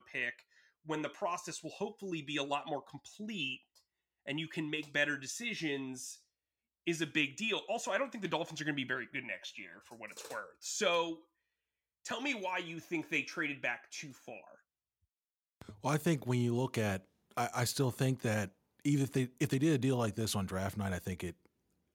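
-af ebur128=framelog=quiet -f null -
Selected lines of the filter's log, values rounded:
Integrated loudness:
  I:         -36.4 LUFS
  Threshold: -46.9 LUFS
Loudness range:
  LRA:         5.5 LU
  Threshold: -57.2 LUFS
  LRA low:   -39.8 LUFS
  LRA high:  -34.4 LUFS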